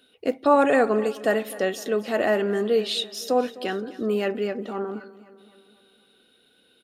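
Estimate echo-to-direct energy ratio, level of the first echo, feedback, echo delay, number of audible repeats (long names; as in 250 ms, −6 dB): −17.0 dB, −18.5 dB, 56%, 256 ms, 4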